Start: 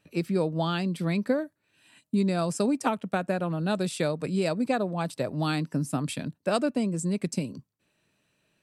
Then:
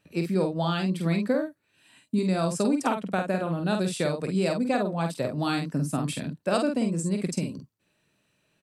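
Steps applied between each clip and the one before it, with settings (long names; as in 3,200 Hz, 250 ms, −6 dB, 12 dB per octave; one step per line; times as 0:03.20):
double-tracking delay 48 ms −5 dB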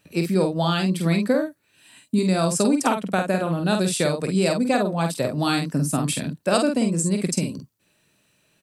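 high-shelf EQ 5,100 Hz +8 dB
level +4.5 dB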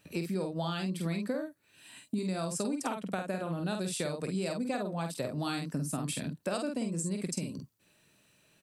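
downward compressor 3 to 1, threshold −32 dBFS, peak gain reduction 13.5 dB
level −2 dB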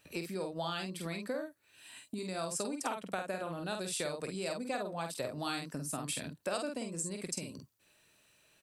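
parametric band 180 Hz −9 dB 1.8 octaves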